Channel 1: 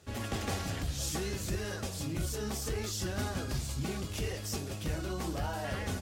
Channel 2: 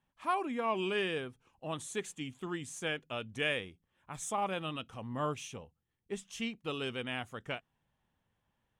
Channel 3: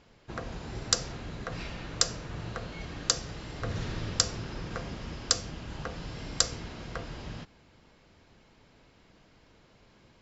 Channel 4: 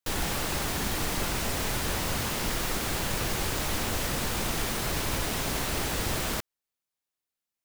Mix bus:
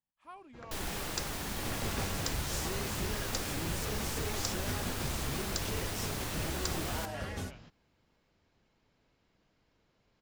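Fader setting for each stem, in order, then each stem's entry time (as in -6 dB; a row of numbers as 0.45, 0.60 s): -3.5, -18.0, -13.0, -8.0 dB; 1.50, 0.00, 0.25, 0.65 s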